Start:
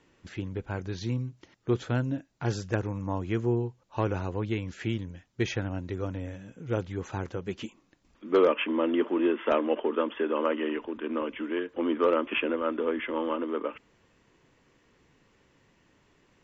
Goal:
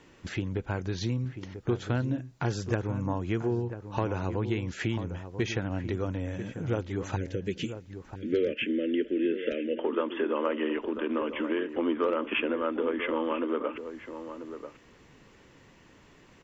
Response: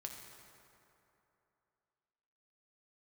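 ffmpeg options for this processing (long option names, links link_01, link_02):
-filter_complex "[0:a]acompressor=threshold=-37dB:ratio=2.5,asettb=1/sr,asplit=3[link_01][link_02][link_03];[link_01]atrim=end=7.164[link_04];[link_02]atrim=start=7.16:end=9.79,asetpts=PTS-STARTPTS,afade=type=in:duration=0.004:curve=qsin,afade=type=out:start_time=2.626:duration=0.004:curve=qsin,asuperstop=centerf=940:order=8:qfactor=0.85[link_05];[link_03]atrim=start=9.786[link_06];[link_04][link_05]acrossfade=duration=0.004:curve1=hsin:curve2=qsin[link_07];[link_07][link_06]acrossfade=duration=0.004:curve1=qsin:curve2=hsin,asplit=2[link_08][link_09];[link_09]adelay=991.3,volume=-10dB,highshelf=frequency=4000:gain=-22.3[link_10];[link_08][link_10]amix=inputs=2:normalize=0,volume=7.5dB"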